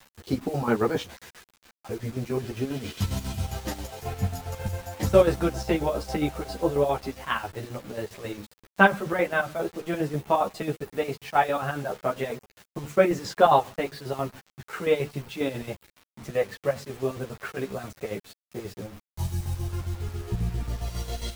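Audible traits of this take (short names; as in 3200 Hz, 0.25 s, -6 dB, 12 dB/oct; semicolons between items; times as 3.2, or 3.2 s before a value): chopped level 7.4 Hz, depth 65%, duty 55%; a quantiser's noise floor 8-bit, dither none; a shimmering, thickened sound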